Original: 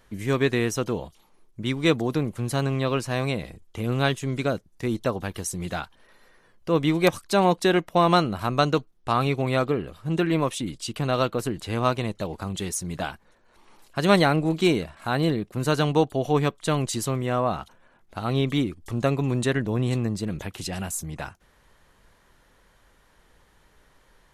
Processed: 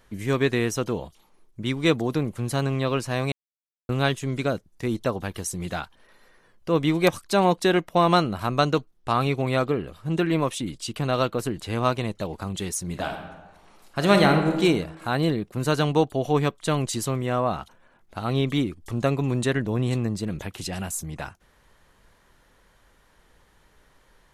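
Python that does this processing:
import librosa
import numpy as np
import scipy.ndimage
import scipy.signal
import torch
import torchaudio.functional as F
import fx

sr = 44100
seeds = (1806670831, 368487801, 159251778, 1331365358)

y = fx.reverb_throw(x, sr, start_s=12.82, length_s=1.76, rt60_s=1.2, drr_db=4.0)
y = fx.edit(y, sr, fx.silence(start_s=3.32, length_s=0.57), tone=tone)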